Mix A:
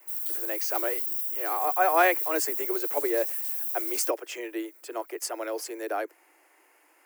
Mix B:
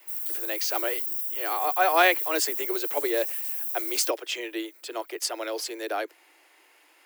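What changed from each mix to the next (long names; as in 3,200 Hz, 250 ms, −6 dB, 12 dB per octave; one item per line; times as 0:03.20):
speech: add parametric band 3,700 Hz +14 dB 0.96 octaves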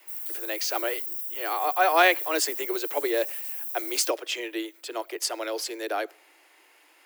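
background −3.5 dB
reverb: on, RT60 0.60 s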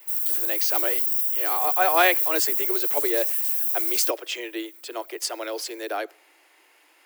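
background +10.0 dB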